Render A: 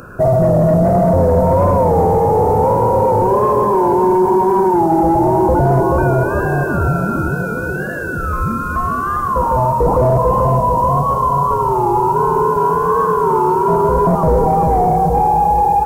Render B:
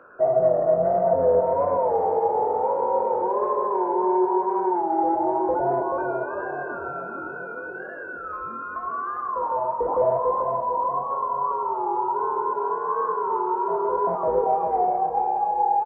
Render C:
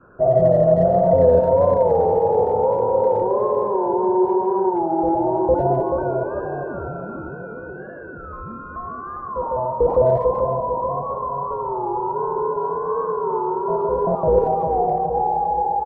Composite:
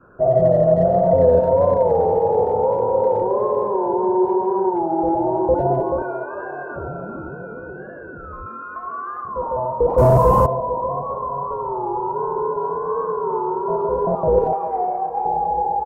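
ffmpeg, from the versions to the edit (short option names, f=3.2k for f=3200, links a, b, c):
-filter_complex "[1:a]asplit=3[a][b][c];[2:a]asplit=5[d][e][f][g][h];[d]atrim=end=6.022[i];[a]atrim=start=6.018:end=6.762[j];[e]atrim=start=6.758:end=8.462[k];[b]atrim=start=8.458:end=9.252[l];[f]atrim=start=9.248:end=9.982[m];[0:a]atrim=start=9.978:end=10.462[n];[g]atrim=start=10.458:end=14.532[o];[c]atrim=start=14.528:end=15.252[p];[h]atrim=start=15.248[q];[i][j]acrossfade=d=0.004:c1=hsin:c2=hsin[r];[r][k]acrossfade=d=0.004:c1=hsin:c2=hsin[s];[s][l]acrossfade=d=0.004:c1=hsin:c2=hsin[t];[t][m]acrossfade=d=0.004:c1=hsin:c2=hsin[u];[u][n]acrossfade=d=0.004:c1=hsin:c2=hsin[v];[v][o]acrossfade=d=0.004:c1=hsin:c2=hsin[w];[w][p]acrossfade=d=0.004:c1=hsin:c2=hsin[x];[x][q]acrossfade=d=0.004:c1=hsin:c2=hsin"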